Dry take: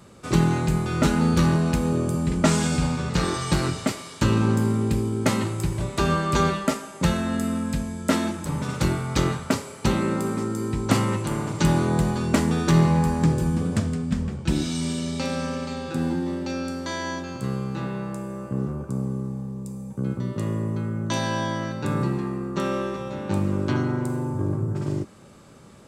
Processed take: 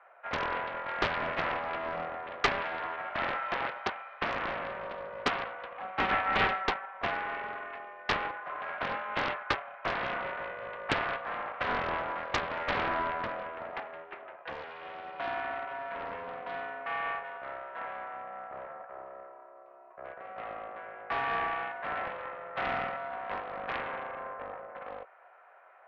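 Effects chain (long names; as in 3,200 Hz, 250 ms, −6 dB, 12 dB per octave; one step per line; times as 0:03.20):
0:08.32–0:09.55: comb filter 4.6 ms, depth 43%
single-sideband voice off tune +160 Hz 490–2,100 Hz
highs frequency-modulated by the lows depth 0.74 ms
level −1.5 dB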